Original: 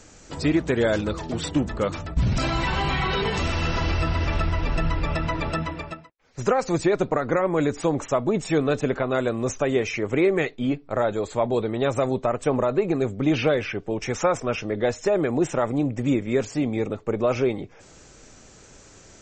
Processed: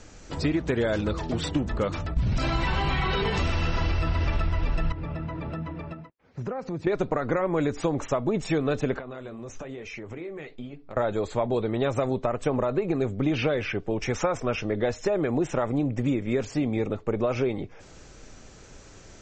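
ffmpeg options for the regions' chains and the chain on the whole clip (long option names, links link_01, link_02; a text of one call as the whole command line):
ffmpeg -i in.wav -filter_complex "[0:a]asettb=1/sr,asplit=3[link_01][link_02][link_03];[link_01]atrim=end=4.924[link_04];[link_02]atrim=start=4.92:end=6.87,asetpts=PTS-STARTPTS,afade=type=in:duration=0.004:curve=qsin,afade=type=out:start_time=1.946:duration=0.004:curve=qsin,highpass=160,aemphasis=mode=reproduction:type=riaa,acompressor=threshold=-36dB:ratio=2.5:attack=3.2:release=140:knee=1:detection=peak[link_05];[link_03]atrim=start=6.866[link_06];[link_04][link_05]acrossfade=duration=0.004:curve1=hsin:curve2=qsin[link_07];[link_07][link_06]acrossfade=duration=0.004:curve1=qsin:curve2=hsin,asettb=1/sr,asplit=3[link_08][link_09][link_10];[link_08]atrim=end=8.994[link_11];[link_09]atrim=start=8.99:end=10.97,asetpts=PTS-STARTPTS,afade=type=in:duration=0.004:curve=qsin,afade=type=out:start_time=1.976:duration=0.004:curve=qsin,acompressor=threshold=-31dB:ratio=6:attack=3.2:release=140:knee=1:detection=peak,flanger=delay=4.1:depth=9.8:regen=-53:speed=1.1:shape=sinusoidal[link_12];[link_10]atrim=start=10.966[link_13];[link_11][link_12]acrossfade=duration=0.004:curve1=hsin:curve2=qsin[link_14];[link_14][link_13]acrossfade=duration=0.004:curve1=qsin:curve2=hsin,lowpass=6200,lowshelf=frequency=68:gain=7,acompressor=threshold=-21dB:ratio=6" out.wav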